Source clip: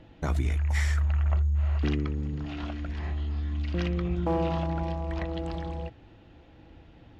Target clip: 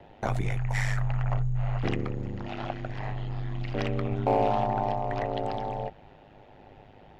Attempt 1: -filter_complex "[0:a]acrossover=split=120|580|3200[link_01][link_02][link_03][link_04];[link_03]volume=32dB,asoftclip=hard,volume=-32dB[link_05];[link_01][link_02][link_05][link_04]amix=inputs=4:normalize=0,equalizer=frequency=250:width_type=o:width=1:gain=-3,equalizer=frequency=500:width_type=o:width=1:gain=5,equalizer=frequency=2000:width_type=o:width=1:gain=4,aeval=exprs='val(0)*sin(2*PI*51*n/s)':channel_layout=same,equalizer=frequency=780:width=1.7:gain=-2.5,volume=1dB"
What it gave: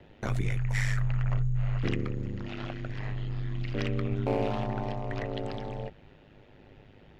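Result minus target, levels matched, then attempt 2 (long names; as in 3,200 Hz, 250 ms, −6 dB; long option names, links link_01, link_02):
1,000 Hz band −8.0 dB
-filter_complex "[0:a]acrossover=split=120|580|3200[link_01][link_02][link_03][link_04];[link_03]volume=32dB,asoftclip=hard,volume=-32dB[link_05];[link_01][link_02][link_05][link_04]amix=inputs=4:normalize=0,equalizer=frequency=250:width_type=o:width=1:gain=-3,equalizer=frequency=500:width_type=o:width=1:gain=5,equalizer=frequency=2000:width_type=o:width=1:gain=4,aeval=exprs='val(0)*sin(2*PI*51*n/s)':channel_layout=same,equalizer=frequency=780:width=1.7:gain=9,volume=1dB"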